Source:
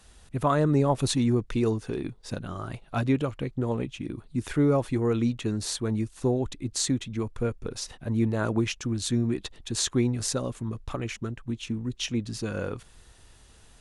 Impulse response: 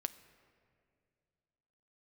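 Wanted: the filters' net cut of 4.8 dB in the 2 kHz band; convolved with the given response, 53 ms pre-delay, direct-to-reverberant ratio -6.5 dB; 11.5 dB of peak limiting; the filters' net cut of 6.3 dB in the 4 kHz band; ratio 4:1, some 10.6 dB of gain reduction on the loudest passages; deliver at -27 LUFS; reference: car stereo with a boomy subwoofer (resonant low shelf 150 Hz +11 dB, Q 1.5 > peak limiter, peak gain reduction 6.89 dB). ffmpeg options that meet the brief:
-filter_complex "[0:a]equalizer=f=2000:t=o:g=-5,equalizer=f=4000:t=o:g=-6.5,acompressor=threshold=0.0251:ratio=4,alimiter=level_in=1.88:limit=0.0631:level=0:latency=1,volume=0.531,asplit=2[s0][s1];[1:a]atrim=start_sample=2205,adelay=53[s2];[s1][s2]afir=irnorm=-1:irlink=0,volume=2.37[s3];[s0][s3]amix=inputs=2:normalize=0,lowshelf=f=150:t=q:w=1.5:g=11,volume=1.06,alimiter=limit=0.126:level=0:latency=1"

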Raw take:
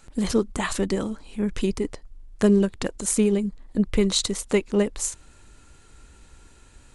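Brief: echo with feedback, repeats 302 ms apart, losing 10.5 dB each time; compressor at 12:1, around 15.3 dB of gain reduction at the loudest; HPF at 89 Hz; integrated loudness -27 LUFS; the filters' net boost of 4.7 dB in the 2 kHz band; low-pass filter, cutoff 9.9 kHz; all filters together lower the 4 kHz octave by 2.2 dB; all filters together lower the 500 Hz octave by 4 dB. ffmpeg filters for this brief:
-af "highpass=89,lowpass=9900,equalizer=f=500:t=o:g=-5.5,equalizer=f=2000:t=o:g=6.5,equalizer=f=4000:t=o:g=-4,acompressor=threshold=0.0251:ratio=12,aecho=1:1:302|604|906:0.299|0.0896|0.0269,volume=3.16"

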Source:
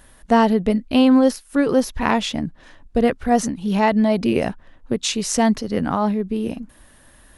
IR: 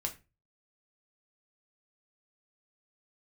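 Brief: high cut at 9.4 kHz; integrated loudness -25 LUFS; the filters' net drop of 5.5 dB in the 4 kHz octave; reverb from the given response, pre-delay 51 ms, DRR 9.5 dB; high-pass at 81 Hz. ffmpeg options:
-filter_complex "[0:a]highpass=81,lowpass=9400,equalizer=f=4000:t=o:g=-7.5,asplit=2[s0][s1];[1:a]atrim=start_sample=2205,adelay=51[s2];[s1][s2]afir=irnorm=-1:irlink=0,volume=0.282[s3];[s0][s3]amix=inputs=2:normalize=0,volume=0.531"

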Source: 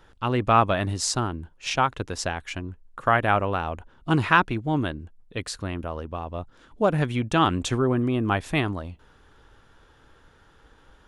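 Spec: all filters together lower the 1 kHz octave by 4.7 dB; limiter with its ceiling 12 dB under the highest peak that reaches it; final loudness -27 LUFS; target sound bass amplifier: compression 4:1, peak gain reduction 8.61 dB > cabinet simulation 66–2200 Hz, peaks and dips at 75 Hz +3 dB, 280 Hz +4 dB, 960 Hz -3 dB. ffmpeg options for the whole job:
-af "equalizer=f=1000:t=o:g=-5,alimiter=limit=0.15:level=0:latency=1,acompressor=threshold=0.0282:ratio=4,highpass=f=66:w=0.5412,highpass=f=66:w=1.3066,equalizer=f=75:t=q:w=4:g=3,equalizer=f=280:t=q:w=4:g=4,equalizer=f=960:t=q:w=4:g=-3,lowpass=f=2200:w=0.5412,lowpass=f=2200:w=1.3066,volume=2.82"

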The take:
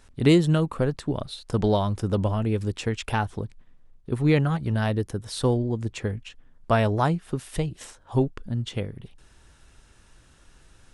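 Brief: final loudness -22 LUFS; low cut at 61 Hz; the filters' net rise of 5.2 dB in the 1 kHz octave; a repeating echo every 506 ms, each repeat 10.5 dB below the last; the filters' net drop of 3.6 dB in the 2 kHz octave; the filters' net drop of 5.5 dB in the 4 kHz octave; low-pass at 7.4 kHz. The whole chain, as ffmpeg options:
-af "highpass=61,lowpass=7400,equalizer=f=1000:t=o:g=8.5,equalizer=f=2000:t=o:g=-7.5,equalizer=f=4000:t=o:g=-4.5,aecho=1:1:506|1012|1518:0.299|0.0896|0.0269,volume=1.33"

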